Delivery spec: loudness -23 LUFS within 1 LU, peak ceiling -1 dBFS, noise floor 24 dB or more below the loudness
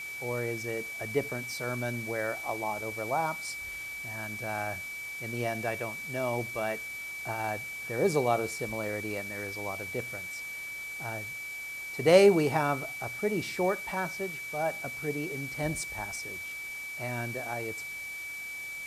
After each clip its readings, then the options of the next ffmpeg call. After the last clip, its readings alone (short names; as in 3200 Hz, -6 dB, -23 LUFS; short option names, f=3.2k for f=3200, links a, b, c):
steady tone 2300 Hz; tone level -37 dBFS; noise floor -40 dBFS; noise floor target -56 dBFS; loudness -31.5 LUFS; peak -6.5 dBFS; loudness target -23.0 LUFS
-> -af "bandreject=f=2.3k:w=30"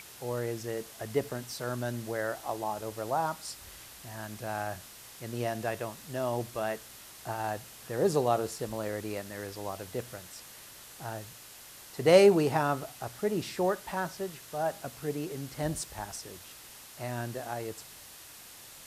steady tone none; noise floor -50 dBFS; noise floor target -56 dBFS
-> -af "afftdn=nr=6:nf=-50"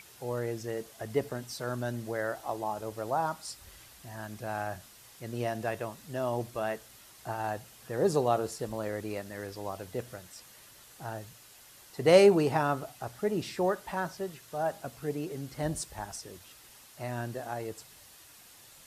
noise floor -55 dBFS; noise floor target -56 dBFS
-> -af "afftdn=nr=6:nf=-55"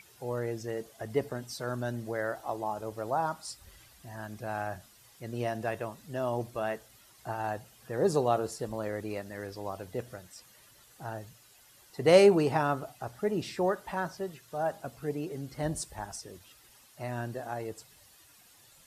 noise floor -59 dBFS; loudness -32.0 LUFS; peak -7.0 dBFS; loudness target -23.0 LUFS
-> -af "volume=9dB,alimiter=limit=-1dB:level=0:latency=1"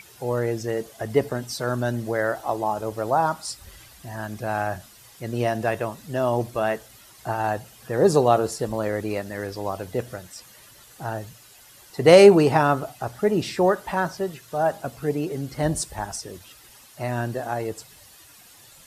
loudness -23.5 LUFS; peak -1.0 dBFS; noise floor -50 dBFS